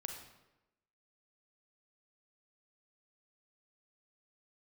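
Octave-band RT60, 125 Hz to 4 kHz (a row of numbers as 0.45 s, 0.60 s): 0.90 s, 1.0 s, 1.0 s, 0.95 s, 0.85 s, 0.70 s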